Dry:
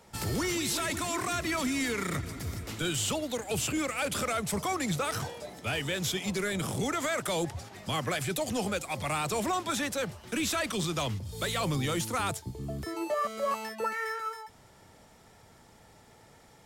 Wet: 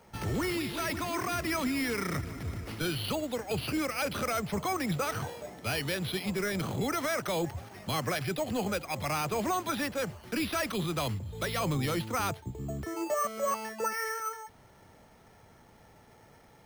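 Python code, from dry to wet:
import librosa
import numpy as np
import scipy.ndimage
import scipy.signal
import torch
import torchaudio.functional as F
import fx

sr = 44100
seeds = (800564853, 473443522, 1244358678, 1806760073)

y = np.repeat(scipy.signal.resample_poly(x, 1, 6), 6)[:len(x)]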